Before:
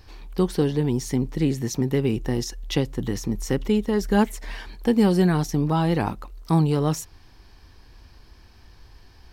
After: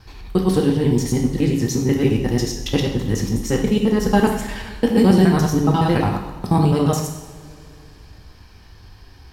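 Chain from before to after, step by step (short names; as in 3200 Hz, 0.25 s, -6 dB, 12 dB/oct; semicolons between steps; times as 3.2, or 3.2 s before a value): local time reversal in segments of 70 ms; two-slope reverb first 0.77 s, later 3.1 s, from -18 dB, DRR 1 dB; gain +3 dB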